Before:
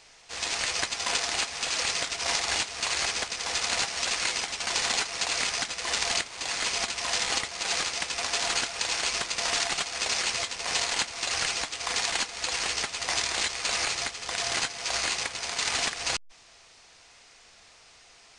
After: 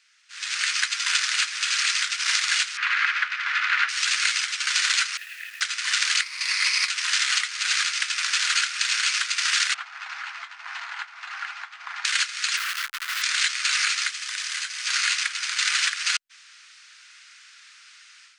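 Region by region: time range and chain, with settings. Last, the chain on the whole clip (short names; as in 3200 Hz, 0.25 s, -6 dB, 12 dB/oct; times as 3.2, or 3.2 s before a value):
2.77–3.89 LPF 2200 Hz + bell 1500 Hz +6.5 dB 2.2 oct
5.17–5.61 vowel filter e + high shelf 4200 Hz -9 dB + requantised 8-bit, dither none
6.21–6.89 ripple EQ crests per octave 0.88, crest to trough 9 dB + requantised 12-bit, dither triangular
9.74–12.05 synth low-pass 800 Hz, resonance Q 3.7 + tilt +4.5 dB/oct
12.57–13.22 LPF 6800 Hz + Schmitt trigger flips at -30 dBFS + notch 860 Hz, Q 8.4
14.08–14.87 high shelf 9400 Hz +7 dB + notch 1400 Hz, Q 23 + compressor 3:1, threshold -32 dBFS
whole clip: elliptic high-pass 1400 Hz, stop band 70 dB; high shelf 2000 Hz -9.5 dB; AGC gain up to 13 dB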